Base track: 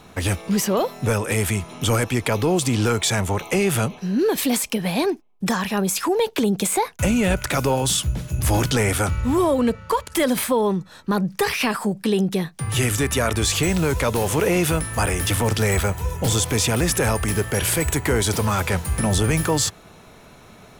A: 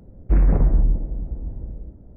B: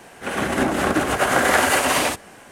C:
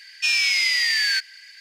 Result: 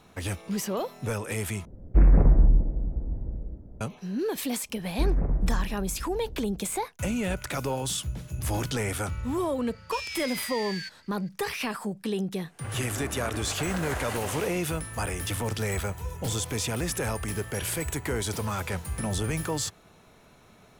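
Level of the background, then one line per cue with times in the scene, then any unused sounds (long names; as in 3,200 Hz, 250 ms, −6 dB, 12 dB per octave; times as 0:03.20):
base track −9.5 dB
0:01.65: overwrite with A −1 dB
0:04.69: mix in A −9 dB
0:09.69: mix in C −16.5 dB
0:12.38: mix in B −18 dB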